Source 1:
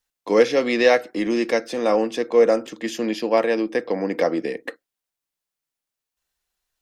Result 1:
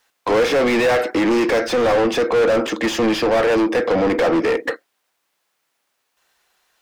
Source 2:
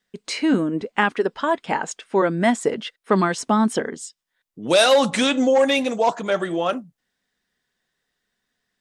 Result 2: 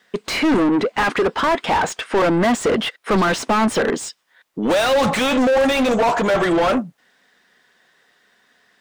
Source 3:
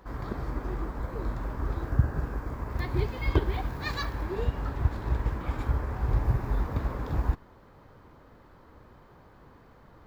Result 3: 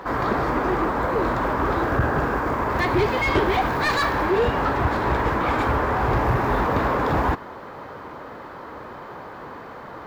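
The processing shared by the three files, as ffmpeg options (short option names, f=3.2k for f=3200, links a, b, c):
-filter_complex "[0:a]crystalizer=i=0.5:c=0,asplit=2[a][b];[b]highpass=f=720:p=1,volume=36dB,asoftclip=type=tanh:threshold=-2.5dB[c];[a][c]amix=inputs=2:normalize=0,lowpass=f=1.5k:p=1,volume=-6dB,volume=-6dB"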